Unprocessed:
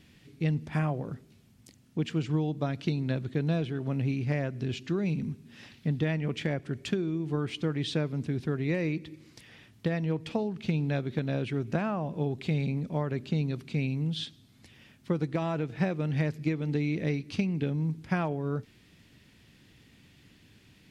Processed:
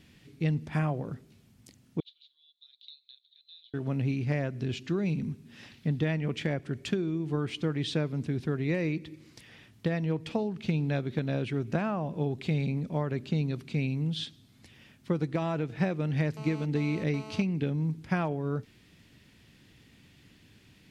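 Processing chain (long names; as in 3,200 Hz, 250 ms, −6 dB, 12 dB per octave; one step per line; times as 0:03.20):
0:02.00–0:03.74: flat-topped band-pass 3,800 Hz, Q 6.3
0:16.37–0:17.42: phone interference −45 dBFS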